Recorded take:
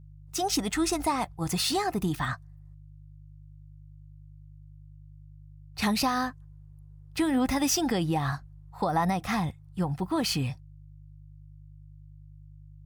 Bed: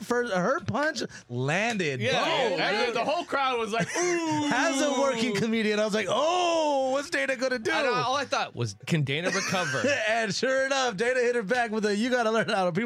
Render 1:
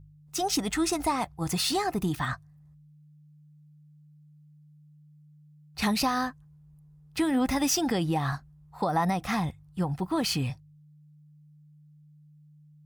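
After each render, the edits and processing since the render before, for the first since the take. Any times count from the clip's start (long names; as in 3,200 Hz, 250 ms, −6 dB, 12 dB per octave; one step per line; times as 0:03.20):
hum removal 50 Hz, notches 2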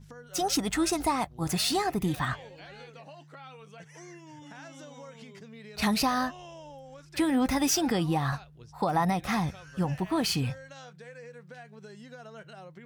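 mix in bed −22 dB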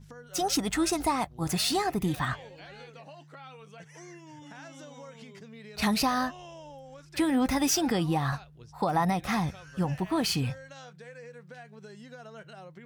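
no processing that can be heard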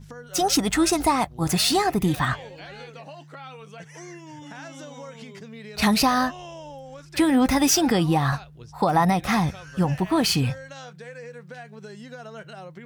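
level +6.5 dB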